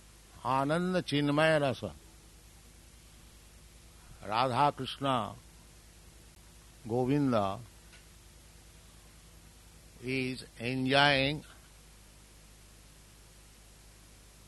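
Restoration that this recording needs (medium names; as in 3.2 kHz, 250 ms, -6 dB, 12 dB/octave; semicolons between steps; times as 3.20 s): de-hum 51.3 Hz, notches 4; interpolate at 6.35 s, 12 ms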